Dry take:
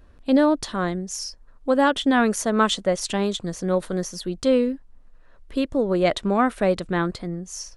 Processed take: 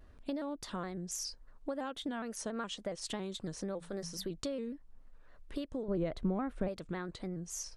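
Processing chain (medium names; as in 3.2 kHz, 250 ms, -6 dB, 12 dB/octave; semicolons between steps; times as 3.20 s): 3.74–4.30 s: hum notches 60/120/180 Hz; compression 12:1, threshold -29 dBFS, peak gain reduction 16 dB; 5.88–6.68 s: tilt EQ -3 dB/octave; vibrato with a chosen wave square 3.6 Hz, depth 100 cents; trim -6 dB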